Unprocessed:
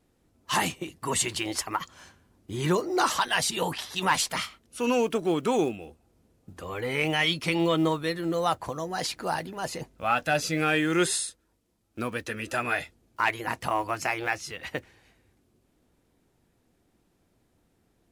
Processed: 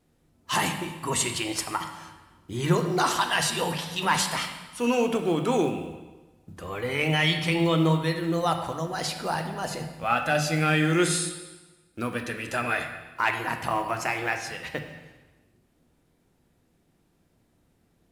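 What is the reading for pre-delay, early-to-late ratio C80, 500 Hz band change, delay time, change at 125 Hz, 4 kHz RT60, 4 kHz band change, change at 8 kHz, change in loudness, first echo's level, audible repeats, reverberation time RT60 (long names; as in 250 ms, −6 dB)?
7 ms, 9.0 dB, +0.5 dB, no echo audible, +6.5 dB, 1.1 s, +1.0 dB, +0.5 dB, +1.5 dB, no echo audible, no echo audible, 1.2 s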